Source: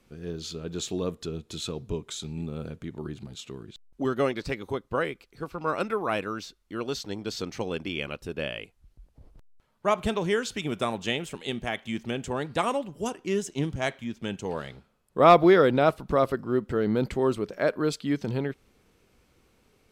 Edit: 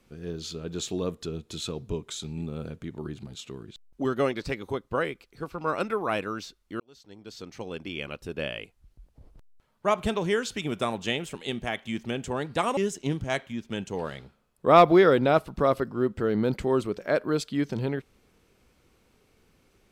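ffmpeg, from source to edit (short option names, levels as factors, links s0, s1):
-filter_complex "[0:a]asplit=3[s0][s1][s2];[s0]atrim=end=6.8,asetpts=PTS-STARTPTS,afade=t=out:st=6.796:d=0.004:c=hsin[s3];[s1]atrim=start=6.8:end=12.772,asetpts=PTS-STARTPTS,afade=t=in:d=1.63[s4];[s2]atrim=start=13.288[s5];[s3][s4]concat=n=2:v=0:a=1[s6];[s6][s5]acrossfade=d=0.004:c1=hsin:c2=hsin"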